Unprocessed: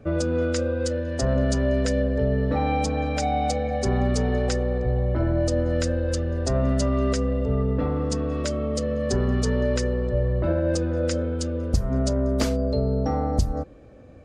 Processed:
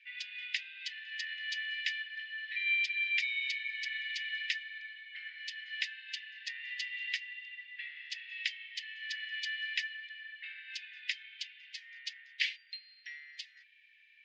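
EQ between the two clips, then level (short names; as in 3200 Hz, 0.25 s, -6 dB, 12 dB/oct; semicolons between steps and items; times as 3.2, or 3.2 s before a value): steep high-pass 1800 Hz 96 dB/oct; synth low-pass 3000 Hz, resonance Q 1.9; air absorption 140 m; +4.5 dB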